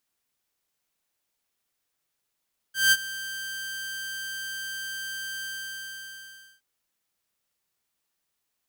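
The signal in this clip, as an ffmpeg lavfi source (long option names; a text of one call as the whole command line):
ffmpeg -f lavfi -i "aevalsrc='0.237*(2*mod(1570*t,1)-1)':duration=3.87:sample_rate=44100,afade=type=in:duration=0.178,afade=type=out:start_time=0.178:duration=0.044:silence=0.133,afade=type=out:start_time=2.69:duration=1.18" out.wav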